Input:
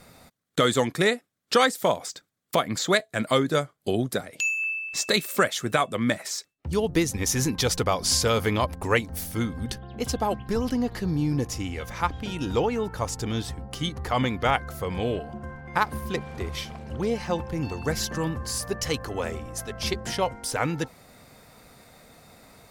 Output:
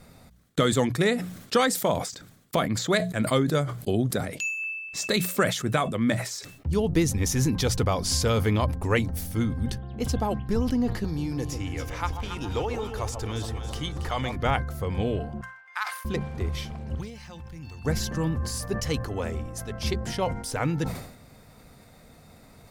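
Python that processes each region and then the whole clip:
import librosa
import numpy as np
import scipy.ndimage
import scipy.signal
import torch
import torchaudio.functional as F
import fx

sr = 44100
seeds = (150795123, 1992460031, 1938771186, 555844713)

y = fx.chain(x, sr, fx.peak_eq(hz=190.0, db=-11.5, octaves=1.7),
    fx.echo_alternate(ms=138, hz=960.0, feedback_pct=71, wet_db=-7),
    fx.band_squash(depth_pct=40), at=(11.04, 14.36))
y = fx.chain(y, sr, fx.highpass(hz=1200.0, slope=24),
    fx.high_shelf(hz=9700.0, db=-4.0), at=(15.41, 16.05))
y = fx.chain(y, sr, fx.median_filter(points=3),
    fx.tone_stack(knobs='5-5-5'),
    fx.env_flatten(amount_pct=50), at=(16.95, 17.85))
y = fx.low_shelf(y, sr, hz=240.0, db=10.5)
y = fx.hum_notches(y, sr, base_hz=60, count=3)
y = fx.sustainer(y, sr, db_per_s=76.0)
y = y * librosa.db_to_amplitude(-4.0)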